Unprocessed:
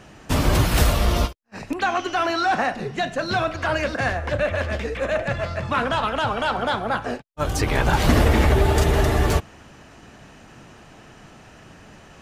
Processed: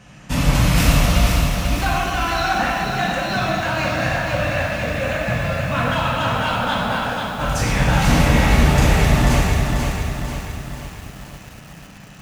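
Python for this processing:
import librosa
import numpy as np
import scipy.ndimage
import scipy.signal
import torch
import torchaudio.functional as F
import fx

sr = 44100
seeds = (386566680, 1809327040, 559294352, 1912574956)

y = fx.graphic_eq_15(x, sr, hz=(160, 400, 2500, 6300), db=(8, -6, 4, 3))
y = fx.rev_gated(y, sr, seeds[0], gate_ms=440, shape='falling', drr_db=-4.5)
y = fx.echo_crushed(y, sr, ms=489, feedback_pct=55, bits=6, wet_db=-4.5)
y = y * 10.0 ** (-4.5 / 20.0)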